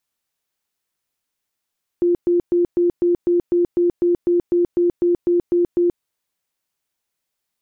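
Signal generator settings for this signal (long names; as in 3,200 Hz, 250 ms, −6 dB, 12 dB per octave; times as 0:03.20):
tone bursts 349 Hz, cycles 45, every 0.25 s, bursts 16, −13 dBFS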